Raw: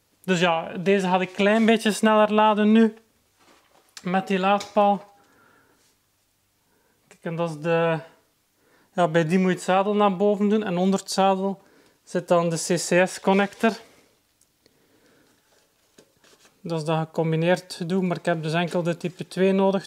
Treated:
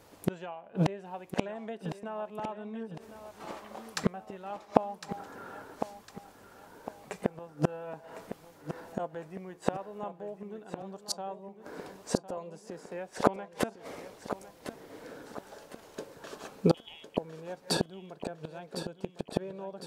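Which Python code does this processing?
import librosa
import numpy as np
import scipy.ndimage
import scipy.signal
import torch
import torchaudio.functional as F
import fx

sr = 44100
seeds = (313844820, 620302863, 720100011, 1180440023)

y = fx.freq_invert(x, sr, carrier_hz=3500, at=(16.74, 17.17))
y = fx.low_shelf(y, sr, hz=450.0, db=4.0)
y = fx.gate_flip(y, sr, shuts_db=-19.0, range_db=-34)
y = fx.transient(y, sr, attack_db=-8, sustain_db=4, at=(7.87, 9.06), fade=0.02)
y = fx.peak_eq(y, sr, hz=730.0, db=11.0, octaves=2.5)
y = fx.echo_feedback(y, sr, ms=1056, feedback_pct=43, wet_db=-11.0)
y = fx.band_squash(y, sr, depth_pct=40, at=(12.37, 13.09))
y = F.gain(torch.from_numpy(y), 3.0).numpy()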